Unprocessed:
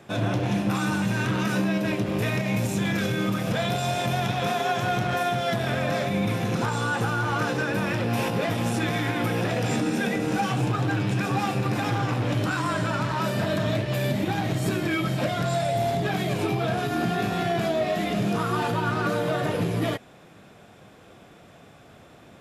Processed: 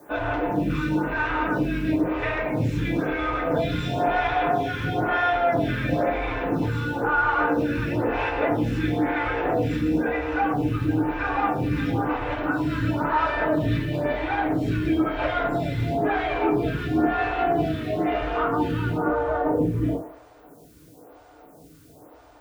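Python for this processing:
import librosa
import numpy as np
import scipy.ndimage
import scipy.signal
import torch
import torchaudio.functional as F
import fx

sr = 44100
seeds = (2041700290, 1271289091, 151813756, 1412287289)

y = fx.octave_divider(x, sr, octaves=2, level_db=2.0)
y = fx.lowpass(y, sr, hz=fx.steps((0.0, 2300.0), (18.97, 1000.0)), slope=12)
y = fx.echo_feedback(y, sr, ms=106, feedback_pct=49, wet_db=-14.0)
y = fx.rev_fdn(y, sr, rt60_s=0.3, lf_ratio=0.95, hf_ratio=0.75, size_ms=20.0, drr_db=-2.5)
y = fx.rider(y, sr, range_db=10, speed_s=0.5)
y = scipy.signal.sosfilt(scipy.signal.butter(2, 61.0, 'highpass', fs=sr, output='sos'), y)
y = fx.peak_eq(y, sr, hz=130.0, db=-2.5, octaves=1.8)
y = fx.quant_dither(y, sr, seeds[0], bits=10, dither='triangular')
y = fx.low_shelf(y, sr, hz=300.0, db=-4.5)
y = fx.stagger_phaser(y, sr, hz=1.0)
y = y * librosa.db_to_amplitude(2.0)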